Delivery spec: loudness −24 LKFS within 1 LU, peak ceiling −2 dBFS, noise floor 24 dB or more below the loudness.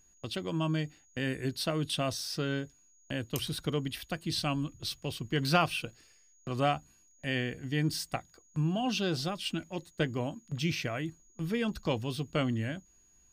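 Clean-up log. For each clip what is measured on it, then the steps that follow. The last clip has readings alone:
interfering tone 6,700 Hz; level of the tone −63 dBFS; integrated loudness −33.5 LKFS; sample peak −10.5 dBFS; target loudness −24.0 LKFS
→ notch filter 6,700 Hz, Q 30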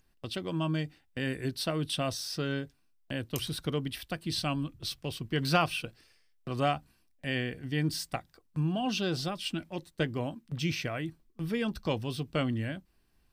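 interfering tone none found; integrated loudness −33.5 LKFS; sample peak −10.5 dBFS; target loudness −24.0 LKFS
→ level +9.5 dB
brickwall limiter −2 dBFS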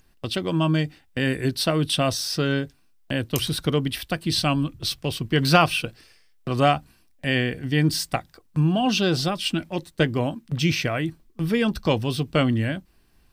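integrated loudness −24.0 LKFS; sample peak −2.0 dBFS; background noise floor −59 dBFS

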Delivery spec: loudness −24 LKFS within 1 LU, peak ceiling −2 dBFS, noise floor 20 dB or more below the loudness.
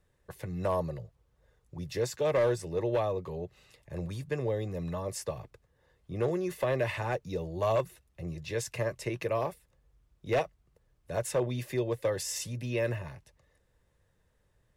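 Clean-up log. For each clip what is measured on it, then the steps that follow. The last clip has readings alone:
share of clipped samples 0.6%; peaks flattened at −21.5 dBFS; integrated loudness −33.0 LKFS; sample peak −21.5 dBFS; target loudness −24.0 LKFS
→ clipped peaks rebuilt −21.5 dBFS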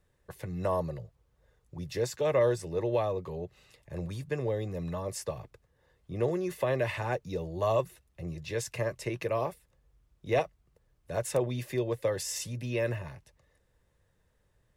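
share of clipped samples 0.0%; integrated loudness −32.5 LKFS; sample peak −16.0 dBFS; target loudness −24.0 LKFS
→ level +8.5 dB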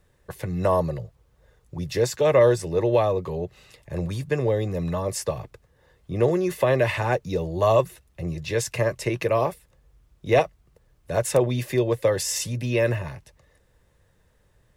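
integrated loudness −24.0 LKFS; sample peak −7.5 dBFS; background noise floor −63 dBFS

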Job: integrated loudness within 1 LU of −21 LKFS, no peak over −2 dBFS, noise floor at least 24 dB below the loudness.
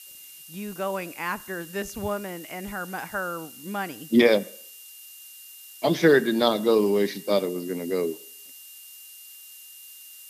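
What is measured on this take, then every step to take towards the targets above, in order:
interfering tone 2,800 Hz; level of the tone −51 dBFS; background noise floor −46 dBFS; target noise floor −50 dBFS; integrated loudness −25.5 LKFS; sample peak −5.0 dBFS; target loudness −21.0 LKFS
→ notch filter 2,800 Hz, Q 30
noise reduction from a noise print 6 dB
level +4.5 dB
brickwall limiter −2 dBFS

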